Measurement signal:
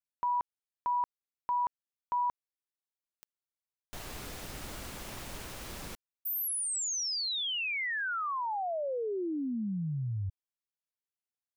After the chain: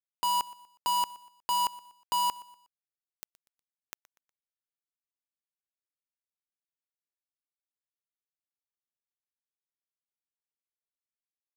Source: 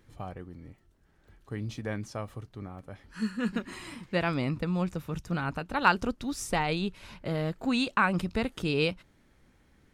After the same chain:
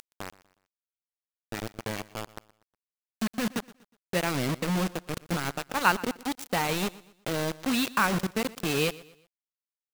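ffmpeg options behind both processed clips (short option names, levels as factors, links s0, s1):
-filter_complex "[0:a]highpass=f=100:w=0.5412,highpass=f=100:w=1.3066,acompressor=mode=upward:threshold=0.00794:ratio=2.5:attack=7.3:release=190:knee=2.83:detection=peak,acrusher=bits=4:mix=0:aa=0.000001,asplit=2[s0][s1];[s1]aecho=0:1:121|242|363:0.1|0.038|0.0144[s2];[s0][s2]amix=inputs=2:normalize=0"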